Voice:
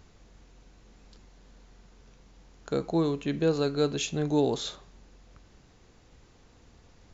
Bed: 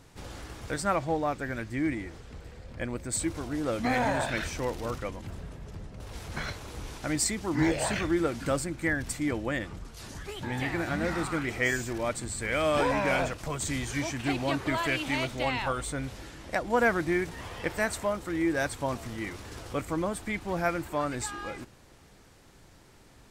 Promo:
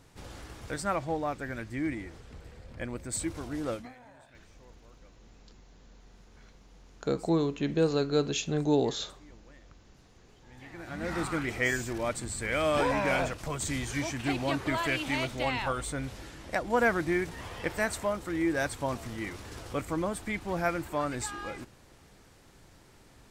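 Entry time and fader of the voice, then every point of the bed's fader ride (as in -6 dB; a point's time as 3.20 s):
4.35 s, -0.5 dB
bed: 3.73 s -3 dB
3.95 s -27 dB
10.36 s -27 dB
11.18 s -1 dB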